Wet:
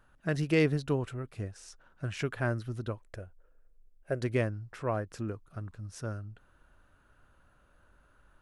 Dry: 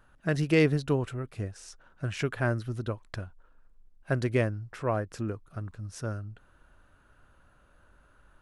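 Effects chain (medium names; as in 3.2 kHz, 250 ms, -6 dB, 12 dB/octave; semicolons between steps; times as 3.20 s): 3.01–4.22 s: graphic EQ 125/250/500/1000/4000 Hz -5/-6/+8/-11/-11 dB; trim -3 dB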